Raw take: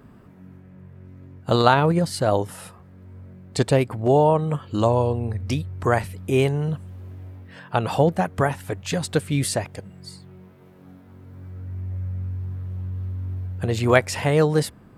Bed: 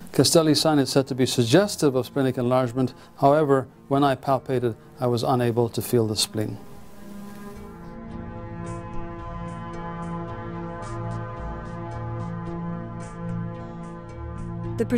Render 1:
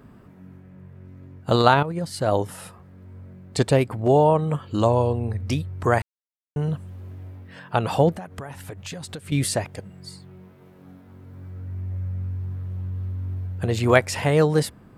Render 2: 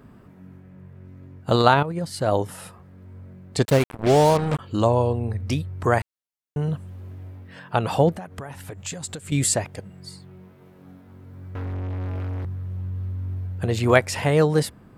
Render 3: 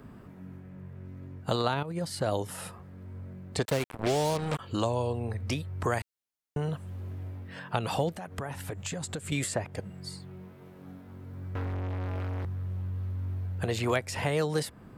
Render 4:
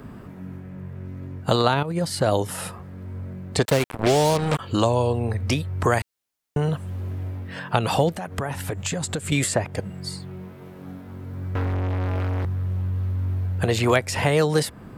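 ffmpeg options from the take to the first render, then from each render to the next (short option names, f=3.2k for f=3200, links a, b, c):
-filter_complex "[0:a]asettb=1/sr,asplit=3[a][b][c];[a]atrim=end=8.154[d];[b]atrim=start=8.15:end=9.32,asetpts=PTS-STARTPTS,afade=t=in:d=0.004:c=qsin,afade=t=out:st=1.166:d=0.004:c=qsin,acompressor=threshold=-31dB:ratio=10:attack=3.2:release=140:knee=1:detection=peak[e];[c]atrim=start=9.316[f];[d][e]acrossfade=d=0.004:c1=hsin:c2=qsin[g];[g][f]acrossfade=d=0.004:c1=qsin:c2=hsin,asplit=4[h][i][j][k];[h]atrim=end=1.83,asetpts=PTS-STARTPTS,afade=t=out:st=1.826:d=0.004:c=hsin:silence=0.211349[l];[i]atrim=start=1.83:end=6.02,asetpts=PTS-STARTPTS,afade=t=in:d=0.57:silence=0.211349,afade=t=out:st=4.186:d=0.004:c=hsin[m];[j]atrim=start=6.02:end=6.56,asetpts=PTS-STARTPTS,volume=0[n];[k]atrim=start=6.56,asetpts=PTS-STARTPTS,afade=t=in:d=0.004:c=hsin[o];[l][m][n][o]concat=n=4:v=0:a=1"
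-filter_complex "[0:a]asettb=1/sr,asplit=3[a][b][c];[a]atrim=end=3.654[d];[b]atrim=start=3.65:end=4.59,asetpts=PTS-STARTPTS,afade=t=in:d=0.004:c=qsin,afade=t=out:st=0.936:d=0.004:c=qsin,acrusher=bits=3:mix=0:aa=0.5[e];[c]atrim=start=4.586[f];[d][e]acrossfade=d=0.004:c1=hsin:c2=qsin[g];[g][f]acrossfade=d=0.004:c1=qsin:c2=hsin,asettb=1/sr,asplit=3[h][i][j];[h]atrim=end=8.744[k];[i]atrim=start=8.74:end=9.54,asetpts=PTS-STARTPTS,afade=t=in:d=0.004:c=qsin,afade=t=out:st=0.796:d=0.004:c=qsin,equalizer=f=7.4k:w=4.2:g=13.5[l];[j]atrim=start=9.536[m];[k][l]acrossfade=d=0.004:c1=hsin:c2=qsin[n];[n][m]acrossfade=d=0.004:c1=qsin:c2=hsin,asettb=1/sr,asplit=3[o][p][q];[o]atrim=end=11.554[r];[p]atrim=start=11.55:end=12.45,asetpts=PTS-STARTPTS,afade=t=in:d=0.004:c=qsin,afade=t=out:st=0.896:d=0.004:c=qsin,asplit=2[s][t];[t]highpass=f=720:p=1,volume=36dB,asoftclip=type=tanh:threshold=-23dB[u];[s][u]amix=inputs=2:normalize=0,lowpass=f=1.7k:p=1,volume=-6dB[v];[q]atrim=start=12.446[w];[r][v]acrossfade=d=0.004:c1=hsin:c2=qsin[x];[x][w]acrossfade=d=0.004:c1=qsin:c2=hsin"
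-filter_complex "[0:a]acrossover=split=450|2400[a][b][c];[a]acompressor=threshold=-32dB:ratio=4[d];[b]acompressor=threshold=-31dB:ratio=4[e];[c]acompressor=threshold=-37dB:ratio=4[f];[d][e][f]amix=inputs=3:normalize=0"
-af "volume=8.5dB"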